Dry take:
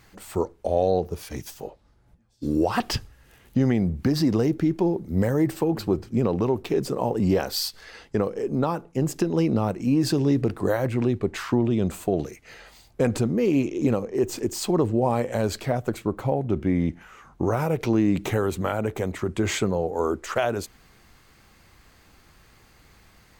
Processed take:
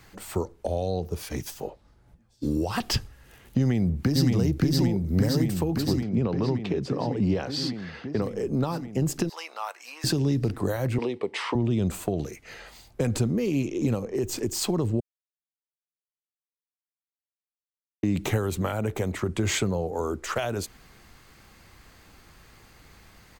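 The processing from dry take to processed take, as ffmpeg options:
-filter_complex "[0:a]asplit=2[s0][s1];[s1]afade=t=in:st=3.58:d=0.01,afade=t=out:st=4.31:d=0.01,aecho=0:1:570|1140|1710|2280|2850|3420|3990|4560|5130|5700|6270|6840:0.944061|0.708046|0.531034|0.398276|0.298707|0.22403|0.168023|0.126017|0.0945127|0.0708845|0.0531634|0.0398725[s2];[s0][s2]amix=inputs=2:normalize=0,asettb=1/sr,asplit=3[s3][s4][s5];[s3]atrim=end=6.034[s6];[s4]atrim=start=6.03:end=8.22,asetpts=PTS-STARTPTS,afade=t=in:d=0.004:c=qsin,afade=t=out:st=2.186:d=0.004:c=qsin,highpass=100,lowpass=3800[s7];[s5]atrim=start=8.216[s8];[s6][s7]acrossfade=d=0.004:c1=hsin:c2=qsin[s9];[s9][s8]acrossfade=d=0.004:c1=qsin:c2=hsin,asettb=1/sr,asplit=3[s10][s11][s12];[s10]atrim=end=9.294[s13];[s11]atrim=start=9.29:end=10.04,asetpts=PTS-STARTPTS,afade=t=in:d=0.004:c=qsin,afade=t=out:st=0.746:d=0.004:c=qsin,highpass=f=900:w=0.5412,highpass=f=900:w=1.3066[s14];[s12]atrim=start=10.036[s15];[s13][s14]acrossfade=d=0.004:c1=hsin:c2=qsin[s16];[s16][s15]acrossfade=d=0.004:c1=qsin:c2=hsin,asettb=1/sr,asplit=3[s17][s18][s19];[s17]atrim=end=10.984[s20];[s18]atrim=start=10.98:end=11.55,asetpts=PTS-STARTPTS,afade=t=in:d=0.004:c=qsin,afade=t=out:st=0.566:d=0.004:c=qsin,highpass=340,equalizer=f=470:t=q:w=4:g=9,equalizer=f=920:t=q:w=4:g=9,equalizer=f=1500:t=q:w=4:g=-8,equalizer=f=2100:t=q:w=4:g=6,equalizer=f=3100:t=q:w=4:g=5,equalizer=f=6800:t=q:w=4:g=-10,lowpass=f=8800:w=0.5412,lowpass=f=8800:w=1.3066[s21];[s19]atrim=start=11.546[s22];[s20][s21]acrossfade=d=0.004:c1=hsin:c2=qsin[s23];[s23][s22]acrossfade=d=0.004:c1=qsin:c2=hsin,asplit=3[s24][s25][s26];[s24]atrim=end=15,asetpts=PTS-STARTPTS,afade=t=out:st=14.996:d=0.004:c=hsin[s27];[s25]atrim=start=15:end=18.03,asetpts=PTS-STARTPTS,volume=0[s28];[s26]atrim=start=18.03,asetpts=PTS-STARTPTS,afade=t=in:d=0.004:c=hsin[s29];[s27][s28][s29]concat=n=3:v=0:a=1,acrossover=split=170|3000[s30][s31][s32];[s31]acompressor=threshold=0.0398:ratio=6[s33];[s30][s33][s32]amix=inputs=3:normalize=0,volume=1.26"

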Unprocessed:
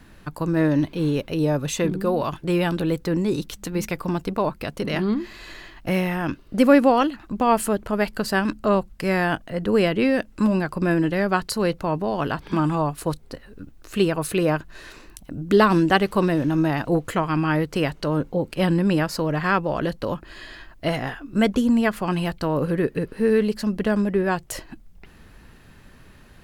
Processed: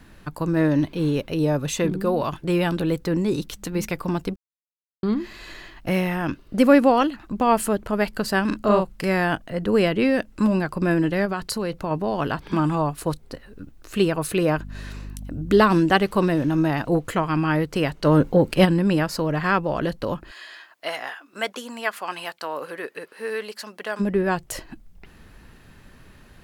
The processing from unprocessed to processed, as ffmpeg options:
-filter_complex "[0:a]asettb=1/sr,asplit=3[s0][s1][s2];[s0]atrim=end=8.474[s3];[s1]atrim=start=8.47:end=9.05,asetpts=PTS-STARTPTS,afade=t=in:d=0.004:c=qsin,afade=t=out:st=0.576:d=0.004:c=qsin,asplit=2[s4][s5];[s5]adelay=38,volume=0.708[s6];[s4][s6]amix=inputs=2:normalize=0,atrim=end_sample=25578[s7];[s2]atrim=start=9.046[s8];[s3][s7]acrossfade=d=0.004:c1=hsin:c2=qsin[s9];[s9][s8]acrossfade=d=0.004:c1=qsin:c2=hsin,asettb=1/sr,asplit=3[s10][s11][s12];[s10]atrim=end=11.254[s13];[s11]atrim=start=11.25:end=11.91,asetpts=PTS-STARTPTS,afade=t=in:d=0.004:c=qsin,afade=t=out:st=0.656:d=0.004:c=qsin,acompressor=threshold=0.0891:ratio=6:attack=3.2:release=140:knee=1:detection=peak[s14];[s12]atrim=start=11.906[s15];[s13][s14]acrossfade=d=0.004:c1=hsin:c2=qsin[s16];[s16][s15]acrossfade=d=0.004:c1=qsin:c2=hsin,asettb=1/sr,asplit=3[s17][s18][s19];[s17]atrim=end=14.574[s20];[s18]atrim=start=14.57:end=15.62,asetpts=PTS-STARTPTS,afade=t=in:d=0.004:c=qsin,afade=t=out:st=1.046:d=0.004:c=qsin,aeval=exprs='val(0)+0.02*(sin(2*PI*50*n/s)+sin(2*PI*2*50*n/s)/2+sin(2*PI*3*50*n/s)/3+sin(2*PI*4*50*n/s)/4+sin(2*PI*5*50*n/s)/5)':c=same[s21];[s19]atrim=start=15.616[s22];[s20][s21]acrossfade=d=0.004:c1=hsin:c2=qsin[s23];[s23][s22]acrossfade=d=0.004:c1=qsin:c2=hsin,asplit=3[s24][s25][s26];[s24]afade=t=out:st=18.04:d=0.02[s27];[s25]acontrast=84,afade=t=in:st=18.04:d=0.02,afade=t=out:st=18.64:d=0.02[s28];[s26]afade=t=in:st=18.64:d=0.02[s29];[s27][s28][s29]amix=inputs=3:normalize=0,asplit=3[s30][s31][s32];[s30]afade=t=out:st=20.3:d=0.02[s33];[s31]highpass=740,afade=t=in:st=20.3:d=0.02,afade=t=out:st=23.99:d=0.02[s34];[s32]afade=t=in:st=23.99:d=0.02[s35];[s33][s34][s35]amix=inputs=3:normalize=0,asplit=3[s36][s37][s38];[s36]atrim=end=4.36,asetpts=PTS-STARTPTS,afade=t=out:st=4.356:d=0.004:c=hsin[s39];[s37]atrim=start=4.36:end=5.03,asetpts=PTS-STARTPTS,volume=0[s40];[s38]atrim=start=5.03,asetpts=PTS-STARTPTS,afade=t=in:d=0.004:c=hsin[s41];[s39][s40][s41]concat=n=3:v=0:a=1"

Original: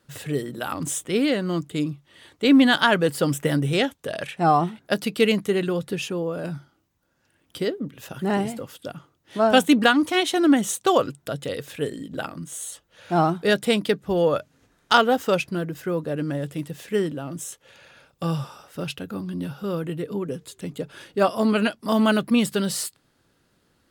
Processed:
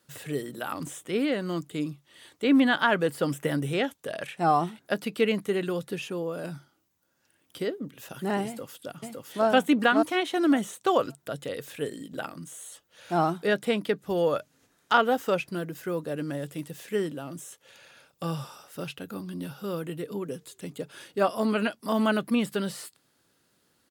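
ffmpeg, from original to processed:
-filter_complex "[0:a]asplit=2[s0][s1];[s1]afade=t=in:st=8.46:d=0.01,afade=t=out:st=9.46:d=0.01,aecho=0:1:560|1120|1680:0.794328|0.119149|0.0178724[s2];[s0][s2]amix=inputs=2:normalize=0,highpass=f=160:p=1,acrossover=split=2800[s3][s4];[s4]acompressor=threshold=0.00631:ratio=4:attack=1:release=60[s5];[s3][s5]amix=inputs=2:normalize=0,highshelf=f=5100:g=8.5,volume=0.631"

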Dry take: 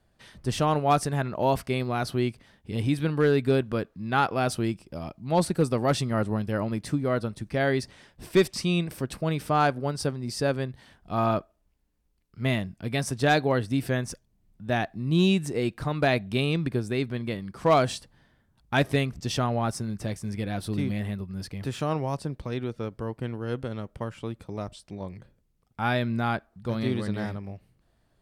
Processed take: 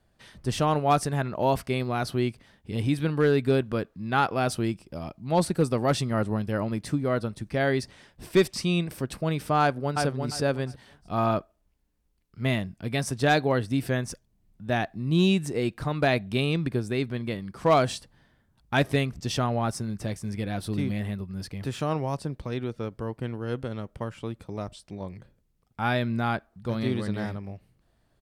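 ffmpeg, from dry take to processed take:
-filter_complex "[0:a]asplit=2[s0][s1];[s1]afade=t=in:st=9.61:d=0.01,afade=t=out:st=10.05:d=0.01,aecho=0:1:350|700|1050:0.595662|0.119132|0.0238265[s2];[s0][s2]amix=inputs=2:normalize=0"

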